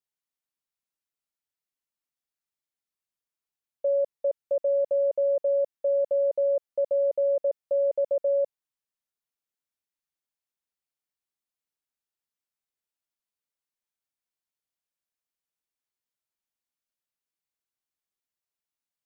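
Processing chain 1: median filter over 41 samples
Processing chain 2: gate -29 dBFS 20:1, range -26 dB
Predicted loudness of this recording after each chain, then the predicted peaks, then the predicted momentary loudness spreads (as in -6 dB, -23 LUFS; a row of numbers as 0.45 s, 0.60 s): -28.0 LUFS, -26.5 LUFS; -23.0 dBFS, -20.0 dBFS; 4 LU, 4 LU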